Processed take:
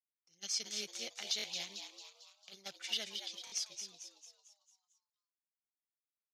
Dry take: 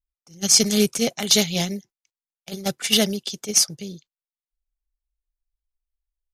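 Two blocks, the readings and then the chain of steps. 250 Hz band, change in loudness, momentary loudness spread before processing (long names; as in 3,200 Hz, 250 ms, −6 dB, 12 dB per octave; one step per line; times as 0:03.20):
−34.5 dB, −20.0 dB, 17 LU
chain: mains-hum notches 60/120 Hz
noise gate with hold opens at −41 dBFS
first difference
in parallel at 0 dB: downward compressor, threshold −30 dBFS, peak gain reduction 16.5 dB
on the sum: high-frequency loss of the air 210 metres
echo with shifted repeats 224 ms, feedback 49%, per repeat +140 Hz, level −7 dB
buffer that repeats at 0:01.37/0:03.45, samples 1,024, times 2
level −8 dB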